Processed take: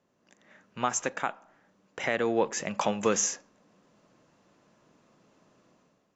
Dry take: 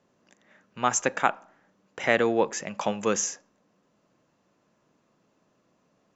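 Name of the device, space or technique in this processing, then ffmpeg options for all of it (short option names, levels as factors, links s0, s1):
low-bitrate web radio: -af "dynaudnorm=f=110:g=7:m=3.16,alimiter=limit=0.376:level=0:latency=1:release=299,volume=0.562" -ar 22050 -c:a aac -b:a 48k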